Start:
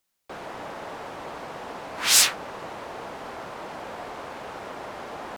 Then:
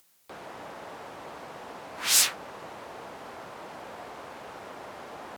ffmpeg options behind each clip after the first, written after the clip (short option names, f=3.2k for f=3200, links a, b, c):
-af "highpass=53,equalizer=f=15k:t=o:w=1.2:g=4.5,acompressor=mode=upward:threshold=-44dB:ratio=2.5,volume=-5.5dB"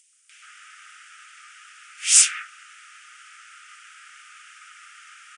-filter_complex "[0:a]acrossover=split=2000[a][b];[a]adelay=130[c];[c][b]amix=inputs=2:normalize=0,aexciter=amount=1.5:drive=0.8:freq=2.2k,afftfilt=real='re*between(b*sr/4096,1200,10000)':imag='im*between(b*sr/4096,1200,10000)':win_size=4096:overlap=0.75,volume=3.5dB"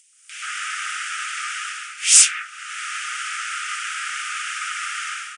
-af "dynaudnorm=f=140:g=5:m=15.5dB,apsyclip=6.5dB,volume=-3dB"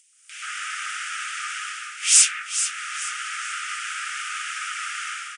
-af "aecho=1:1:432|864|1296|1728:0.316|0.114|0.041|0.0148,volume=-3dB"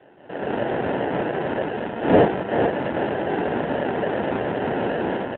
-filter_complex "[0:a]acrusher=samples=38:mix=1:aa=0.000001,asplit=2[a][b];[b]highpass=f=720:p=1,volume=23dB,asoftclip=type=tanh:threshold=-5.5dB[c];[a][c]amix=inputs=2:normalize=0,lowpass=f=1.3k:p=1,volume=-6dB" -ar 8000 -c:a libopencore_amrnb -b:a 7950